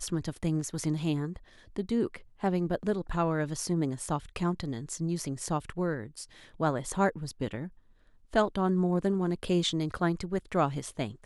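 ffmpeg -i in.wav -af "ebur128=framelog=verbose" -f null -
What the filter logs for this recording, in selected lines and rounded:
Integrated loudness:
  I:         -31.1 LUFS
  Threshold: -41.5 LUFS
Loudness range:
  LRA:         3.6 LU
  Threshold: -51.5 LUFS
  LRA low:   -33.2 LUFS
  LRA high:  -29.6 LUFS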